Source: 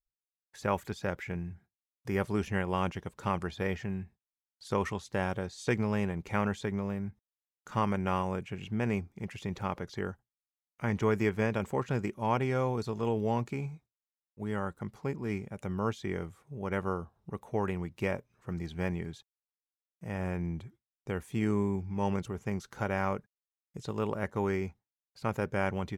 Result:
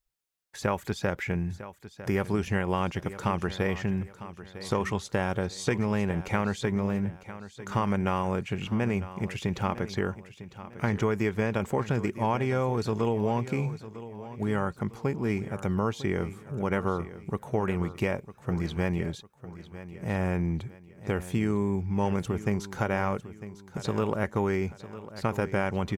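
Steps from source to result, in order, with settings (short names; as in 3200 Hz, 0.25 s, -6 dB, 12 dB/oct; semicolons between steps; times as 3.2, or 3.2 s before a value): compressor, threshold -31 dBFS, peak gain reduction 8 dB; feedback echo 0.952 s, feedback 37%, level -14.5 dB; gain +8 dB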